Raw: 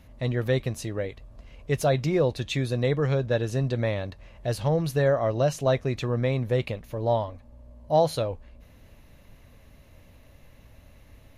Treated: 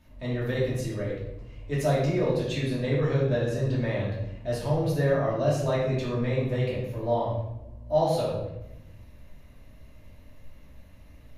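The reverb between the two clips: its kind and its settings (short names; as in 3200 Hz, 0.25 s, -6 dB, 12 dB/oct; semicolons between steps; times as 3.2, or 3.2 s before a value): shoebox room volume 300 m³, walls mixed, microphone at 2.7 m; gain -9.5 dB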